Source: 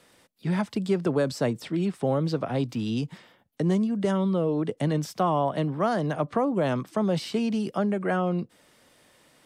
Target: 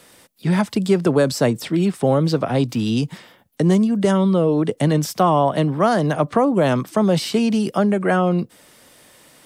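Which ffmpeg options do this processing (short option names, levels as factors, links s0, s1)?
-af "highshelf=f=8100:g=9,volume=2.51"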